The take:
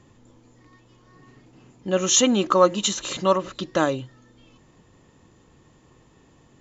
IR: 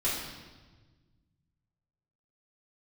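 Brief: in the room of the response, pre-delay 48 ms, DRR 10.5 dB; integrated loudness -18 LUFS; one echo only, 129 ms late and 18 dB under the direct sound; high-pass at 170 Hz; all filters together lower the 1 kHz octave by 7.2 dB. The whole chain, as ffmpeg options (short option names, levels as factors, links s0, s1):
-filter_complex "[0:a]highpass=170,equalizer=f=1000:t=o:g=-9,aecho=1:1:129:0.126,asplit=2[s0][s1];[1:a]atrim=start_sample=2205,adelay=48[s2];[s1][s2]afir=irnorm=-1:irlink=0,volume=0.112[s3];[s0][s3]amix=inputs=2:normalize=0,volume=1.68"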